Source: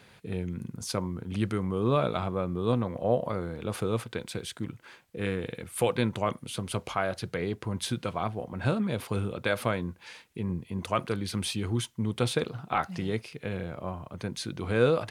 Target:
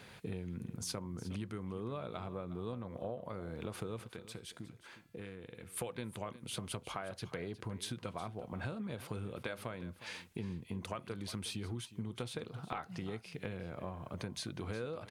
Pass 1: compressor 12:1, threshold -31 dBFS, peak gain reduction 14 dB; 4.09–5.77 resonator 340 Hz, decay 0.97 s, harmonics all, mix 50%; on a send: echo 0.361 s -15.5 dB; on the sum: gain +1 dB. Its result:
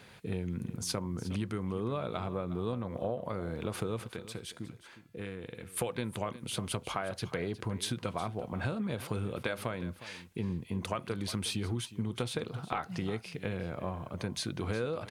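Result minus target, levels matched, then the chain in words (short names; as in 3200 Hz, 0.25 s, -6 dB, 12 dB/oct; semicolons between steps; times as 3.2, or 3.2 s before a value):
compressor: peak gain reduction -7 dB
compressor 12:1, threshold -38.5 dBFS, peak gain reduction 21 dB; 4.09–5.77 resonator 340 Hz, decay 0.97 s, harmonics all, mix 50%; on a send: echo 0.361 s -15.5 dB; on the sum: gain +1 dB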